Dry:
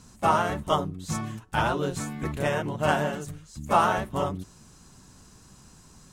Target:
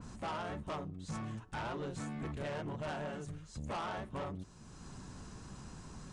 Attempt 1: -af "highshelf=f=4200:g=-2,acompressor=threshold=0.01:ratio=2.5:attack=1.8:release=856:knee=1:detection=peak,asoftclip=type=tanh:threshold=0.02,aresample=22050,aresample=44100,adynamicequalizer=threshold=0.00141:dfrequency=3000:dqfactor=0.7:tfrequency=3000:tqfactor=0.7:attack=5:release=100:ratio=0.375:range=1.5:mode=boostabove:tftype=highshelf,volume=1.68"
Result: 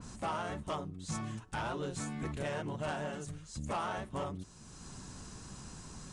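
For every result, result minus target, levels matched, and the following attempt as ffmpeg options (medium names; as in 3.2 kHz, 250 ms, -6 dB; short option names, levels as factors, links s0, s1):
8 kHz band +5.5 dB; saturation: distortion -6 dB
-af "highshelf=f=4200:g=-11.5,acompressor=threshold=0.01:ratio=2.5:attack=1.8:release=856:knee=1:detection=peak,asoftclip=type=tanh:threshold=0.02,aresample=22050,aresample=44100,adynamicequalizer=threshold=0.00141:dfrequency=3000:dqfactor=0.7:tfrequency=3000:tqfactor=0.7:attack=5:release=100:ratio=0.375:range=1.5:mode=boostabove:tftype=highshelf,volume=1.68"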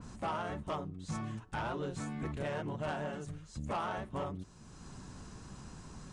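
saturation: distortion -6 dB
-af "highshelf=f=4200:g=-11.5,acompressor=threshold=0.01:ratio=2.5:attack=1.8:release=856:knee=1:detection=peak,asoftclip=type=tanh:threshold=0.01,aresample=22050,aresample=44100,adynamicequalizer=threshold=0.00141:dfrequency=3000:dqfactor=0.7:tfrequency=3000:tqfactor=0.7:attack=5:release=100:ratio=0.375:range=1.5:mode=boostabove:tftype=highshelf,volume=1.68"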